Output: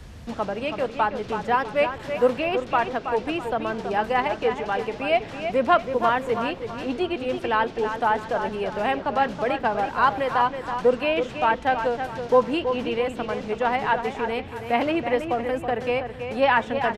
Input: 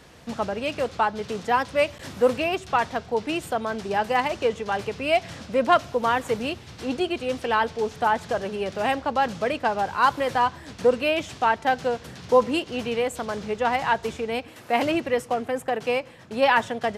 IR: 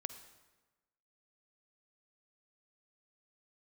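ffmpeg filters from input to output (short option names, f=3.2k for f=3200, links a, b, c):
-filter_complex "[0:a]acrossover=split=100|3700[a][b][c];[a]aeval=exprs='0.0106*sin(PI/2*8.91*val(0)/0.0106)':c=same[d];[b]aecho=1:1:326|652|978|1304:0.398|0.147|0.0545|0.0202[e];[c]acompressor=threshold=-54dB:ratio=6[f];[d][e][f]amix=inputs=3:normalize=0"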